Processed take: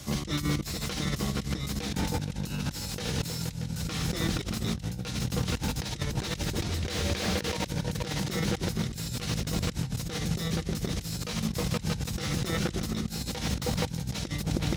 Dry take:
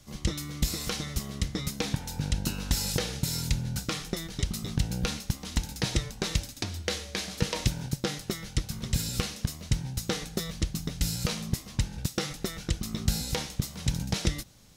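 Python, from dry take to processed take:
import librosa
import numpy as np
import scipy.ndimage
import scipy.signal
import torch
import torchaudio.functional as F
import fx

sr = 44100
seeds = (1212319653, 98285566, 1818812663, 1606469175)

y = fx.echo_opening(x, sr, ms=158, hz=200, octaves=2, feedback_pct=70, wet_db=-6)
y = fx.over_compress(y, sr, threshold_db=-38.0, ratio=-1.0)
y = scipy.signal.sosfilt(scipy.signal.butter(2, 54.0, 'highpass', fs=sr, output='sos'), y)
y = fx.slew_limit(y, sr, full_power_hz=47.0)
y = y * librosa.db_to_amplitude(6.5)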